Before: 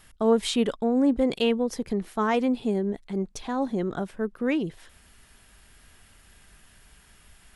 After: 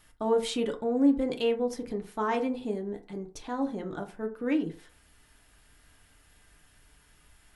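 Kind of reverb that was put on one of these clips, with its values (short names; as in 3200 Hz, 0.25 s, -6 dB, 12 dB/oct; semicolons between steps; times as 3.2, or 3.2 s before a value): FDN reverb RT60 0.39 s, low-frequency decay 0.85×, high-frequency decay 0.45×, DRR 3 dB; gain -6.5 dB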